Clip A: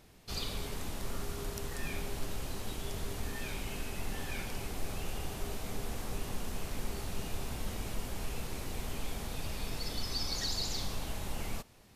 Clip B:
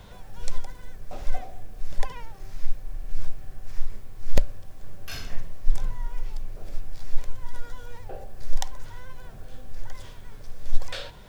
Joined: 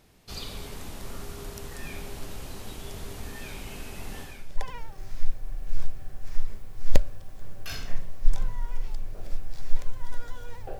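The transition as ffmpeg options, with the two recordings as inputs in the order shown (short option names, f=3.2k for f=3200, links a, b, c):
-filter_complex "[0:a]apad=whole_dur=10.79,atrim=end=10.79,atrim=end=4.69,asetpts=PTS-STARTPTS[a];[1:a]atrim=start=1.61:end=8.21,asetpts=PTS-STARTPTS[b];[a][b]acrossfade=d=0.5:c1=qua:c2=qua"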